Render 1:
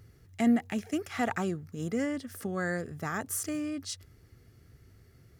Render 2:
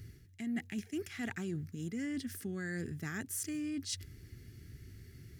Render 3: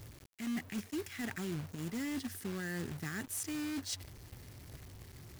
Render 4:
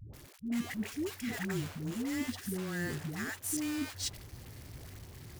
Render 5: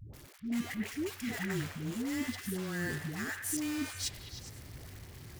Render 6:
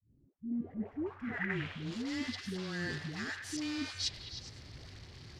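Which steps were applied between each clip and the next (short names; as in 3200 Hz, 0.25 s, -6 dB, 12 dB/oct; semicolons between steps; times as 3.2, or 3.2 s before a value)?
band shelf 790 Hz -13.5 dB; reverse; compressor 6:1, threshold -42 dBFS, peak gain reduction 20 dB; reverse; gain +5.5 dB
companded quantiser 4-bit; gain -1 dB
dispersion highs, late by 0.137 s, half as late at 410 Hz; gain +3 dB
delay with a stepping band-pass 0.103 s, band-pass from 1600 Hz, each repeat 0.7 oct, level -4 dB
opening faded in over 0.82 s; low-pass sweep 250 Hz -> 4600 Hz, 0.35–1.93; gain -2.5 dB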